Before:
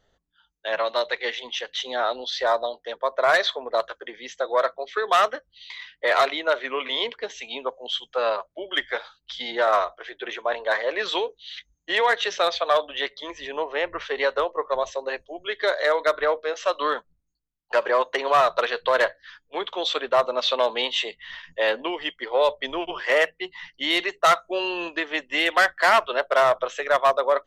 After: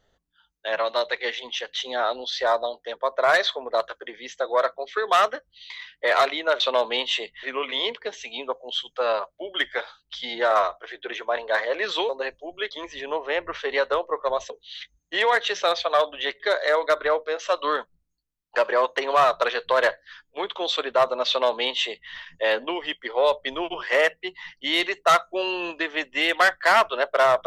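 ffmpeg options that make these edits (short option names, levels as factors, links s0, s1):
-filter_complex "[0:a]asplit=7[s0][s1][s2][s3][s4][s5][s6];[s0]atrim=end=6.602[s7];[s1]atrim=start=20.448:end=21.282[s8];[s2]atrim=start=6.598:end=11.262[s9];[s3]atrim=start=14.958:end=15.572[s10];[s4]atrim=start=13.158:end=14.962[s11];[s5]atrim=start=11.258:end=13.162[s12];[s6]atrim=start=15.568[s13];[s7][s8]acrossfade=d=0.004:c1=hsin:c2=hsin[s14];[s14][s9]acrossfade=d=0.004:c1=hsin:c2=hsin[s15];[s15][s10]acrossfade=d=0.004:c1=hsin:c2=hsin[s16];[s16][s11]acrossfade=d=0.004:c1=hsin:c2=hsin[s17];[s17][s12]acrossfade=d=0.004:c1=hsin:c2=hsin[s18];[s18][s13]acrossfade=d=0.004:c1=hsin:c2=hsin"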